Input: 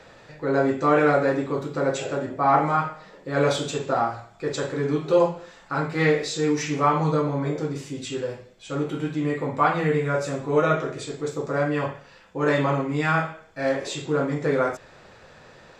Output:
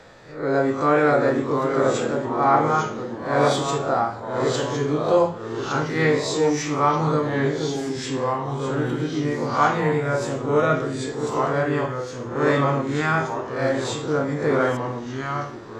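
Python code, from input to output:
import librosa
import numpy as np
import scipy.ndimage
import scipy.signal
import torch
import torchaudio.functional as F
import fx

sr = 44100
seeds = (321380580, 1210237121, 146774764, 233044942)

y = fx.spec_swells(x, sr, rise_s=0.44)
y = fx.peak_eq(y, sr, hz=2700.0, db=-5.0, octaves=0.33)
y = fx.echo_pitch(y, sr, ms=607, semitones=-2, count=2, db_per_echo=-6.0)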